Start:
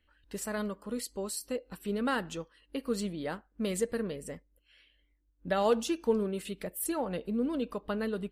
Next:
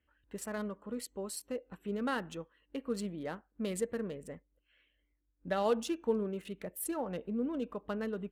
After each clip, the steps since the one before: Wiener smoothing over 9 samples; HPF 51 Hz; gain -3.5 dB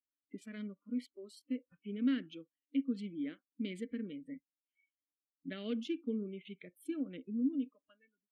ending faded out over 1.20 s; vowel filter i; spectral noise reduction 27 dB; gain +9.5 dB

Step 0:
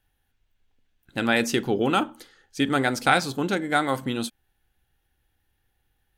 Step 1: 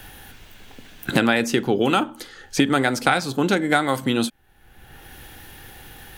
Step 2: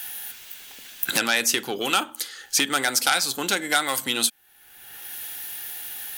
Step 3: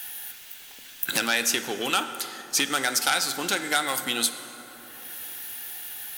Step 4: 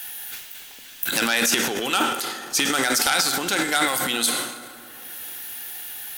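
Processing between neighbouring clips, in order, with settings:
three-band squash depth 100%; gain +3 dB
sine folder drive 6 dB, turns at -1 dBFS; tilt +4.5 dB/oct; gain -12.5 dB
plate-style reverb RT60 3.8 s, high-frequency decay 0.5×, DRR 9.5 dB; gain -2.5 dB
transient shaper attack -1 dB, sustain +11 dB; gain +2 dB

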